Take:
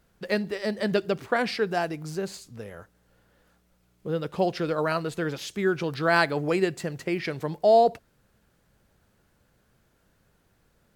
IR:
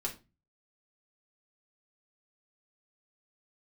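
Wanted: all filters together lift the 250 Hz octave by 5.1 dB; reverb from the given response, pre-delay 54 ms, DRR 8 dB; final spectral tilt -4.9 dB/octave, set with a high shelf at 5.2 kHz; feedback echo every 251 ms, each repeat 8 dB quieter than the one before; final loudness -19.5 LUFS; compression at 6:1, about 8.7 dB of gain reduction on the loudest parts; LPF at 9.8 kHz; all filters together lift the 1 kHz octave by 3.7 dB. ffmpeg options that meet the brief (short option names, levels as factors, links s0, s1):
-filter_complex "[0:a]lowpass=9800,equalizer=f=250:t=o:g=7.5,equalizer=f=1000:t=o:g=5,highshelf=f=5200:g=4.5,acompressor=threshold=0.1:ratio=6,aecho=1:1:251|502|753|1004|1255:0.398|0.159|0.0637|0.0255|0.0102,asplit=2[s0][s1];[1:a]atrim=start_sample=2205,adelay=54[s2];[s1][s2]afir=irnorm=-1:irlink=0,volume=0.316[s3];[s0][s3]amix=inputs=2:normalize=0,volume=2.11"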